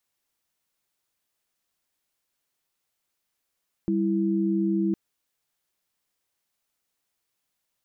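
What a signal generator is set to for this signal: chord G3/E4 sine, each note -24 dBFS 1.06 s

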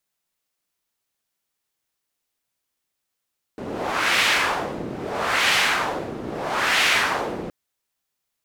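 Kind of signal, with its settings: wind-like swept noise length 3.92 s, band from 320 Hz, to 2.4 kHz, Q 1.3, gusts 3, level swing 13 dB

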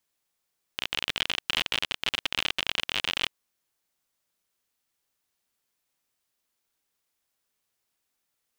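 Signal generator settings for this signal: random clicks 52 per s -10 dBFS 2.51 s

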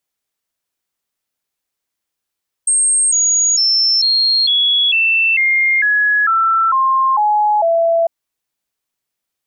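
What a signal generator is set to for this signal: stepped sine 8.48 kHz down, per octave 3, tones 12, 0.45 s, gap 0.00 s -10.5 dBFS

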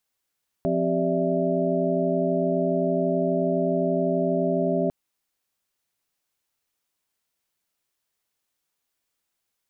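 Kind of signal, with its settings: chord F3/C4/G4/D5/E5 sine, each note -27 dBFS 4.25 s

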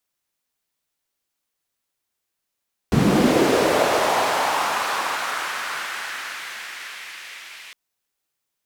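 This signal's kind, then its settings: swept filtered noise white, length 4.81 s bandpass, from 130 Hz, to 2.3 kHz, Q 1.8, linear, gain ramp -35.5 dB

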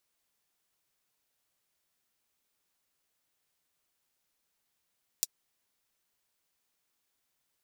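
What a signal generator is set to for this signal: closed hi-hat, high-pass 5.1 kHz, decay 0.04 s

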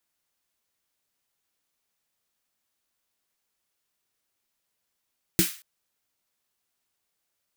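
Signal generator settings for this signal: snare drum length 0.23 s, tones 180 Hz, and 330 Hz, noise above 1.5 kHz, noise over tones -3 dB, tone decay 0.12 s, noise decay 0.38 s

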